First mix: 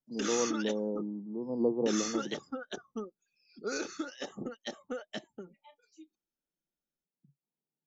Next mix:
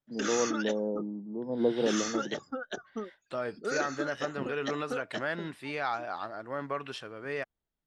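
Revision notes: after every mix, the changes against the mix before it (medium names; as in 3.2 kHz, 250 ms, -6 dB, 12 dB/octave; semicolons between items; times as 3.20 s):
second voice: unmuted; master: add fifteen-band graphic EQ 100 Hz +6 dB, 630 Hz +5 dB, 1.6 kHz +6 dB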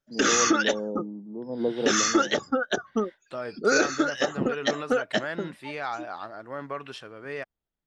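background +11.5 dB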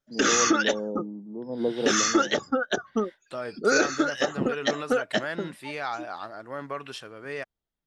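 second voice: add treble shelf 6.3 kHz +10.5 dB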